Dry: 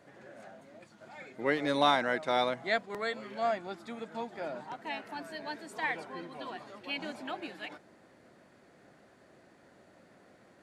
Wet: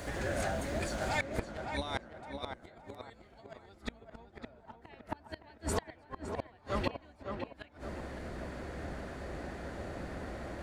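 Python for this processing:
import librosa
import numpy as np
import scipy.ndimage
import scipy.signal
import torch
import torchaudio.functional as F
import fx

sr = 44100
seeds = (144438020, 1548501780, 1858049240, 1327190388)

y = fx.octave_divider(x, sr, octaves=2, level_db=4.0)
y = fx.high_shelf(y, sr, hz=4400.0, db=fx.steps((0.0, 11.5), (3.8, -3.0)))
y = fx.over_compress(y, sr, threshold_db=-33.0, ratio=-0.5)
y = fx.gate_flip(y, sr, shuts_db=-30.0, range_db=-35)
y = fx.echo_tape(y, sr, ms=562, feedback_pct=43, wet_db=-3.5, lp_hz=1700.0, drive_db=33.0, wow_cents=35)
y = F.gain(torch.from_numpy(y), 11.5).numpy()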